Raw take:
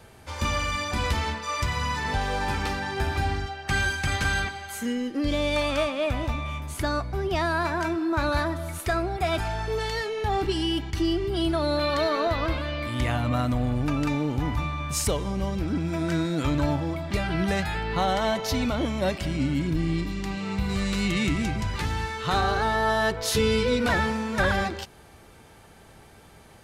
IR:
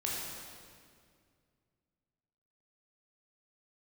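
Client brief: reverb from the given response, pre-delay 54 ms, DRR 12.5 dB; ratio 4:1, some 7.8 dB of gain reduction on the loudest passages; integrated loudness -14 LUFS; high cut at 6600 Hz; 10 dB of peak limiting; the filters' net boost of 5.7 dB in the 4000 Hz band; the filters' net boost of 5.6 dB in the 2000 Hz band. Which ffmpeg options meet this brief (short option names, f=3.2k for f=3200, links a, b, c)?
-filter_complex "[0:a]lowpass=6.6k,equalizer=f=2k:t=o:g=6,equalizer=f=4k:t=o:g=5.5,acompressor=threshold=-26dB:ratio=4,alimiter=level_in=0.5dB:limit=-24dB:level=0:latency=1,volume=-0.5dB,asplit=2[a][b];[1:a]atrim=start_sample=2205,adelay=54[c];[b][c]afir=irnorm=-1:irlink=0,volume=-17dB[d];[a][d]amix=inputs=2:normalize=0,volume=18.5dB"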